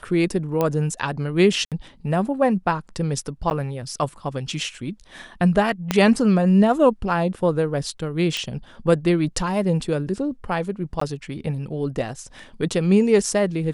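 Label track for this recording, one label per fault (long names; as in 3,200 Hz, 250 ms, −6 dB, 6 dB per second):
0.610000	0.610000	click −9 dBFS
1.650000	1.720000	drop-out 67 ms
3.500000	3.510000	drop-out 9.5 ms
5.910000	5.910000	click −5 dBFS
8.370000	8.370000	click −12 dBFS
11.000000	11.010000	drop-out 14 ms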